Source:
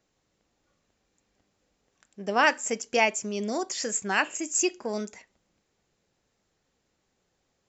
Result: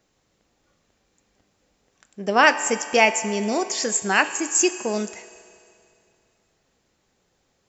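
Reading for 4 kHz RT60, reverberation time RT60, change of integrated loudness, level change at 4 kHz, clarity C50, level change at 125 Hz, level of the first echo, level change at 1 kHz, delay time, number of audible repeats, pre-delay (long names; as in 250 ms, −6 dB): 2.4 s, 2.5 s, +6.0 dB, +6.5 dB, 12.5 dB, can't be measured, no echo audible, +6.5 dB, no echo audible, no echo audible, 3 ms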